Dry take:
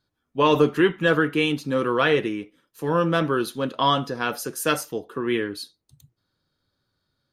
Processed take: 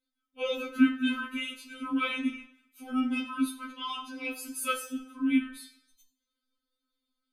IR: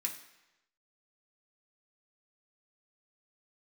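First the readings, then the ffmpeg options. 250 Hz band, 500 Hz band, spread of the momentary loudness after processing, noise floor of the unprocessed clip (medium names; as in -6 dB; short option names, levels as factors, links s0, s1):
-3.5 dB, -18.0 dB, 14 LU, -78 dBFS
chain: -filter_complex "[0:a]afreqshift=-86[s0];[1:a]atrim=start_sample=2205,asetrate=57330,aresample=44100[s1];[s0][s1]afir=irnorm=-1:irlink=0,afftfilt=real='re*3.46*eq(mod(b,12),0)':imag='im*3.46*eq(mod(b,12),0)':win_size=2048:overlap=0.75,volume=0.668"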